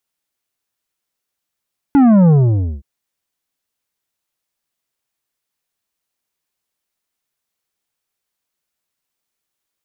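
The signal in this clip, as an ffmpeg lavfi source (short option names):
-f lavfi -i "aevalsrc='0.422*clip((0.87-t)/0.53,0,1)*tanh(2.82*sin(2*PI*290*0.87/log(65/290)*(exp(log(65/290)*t/0.87)-1)))/tanh(2.82)':d=0.87:s=44100"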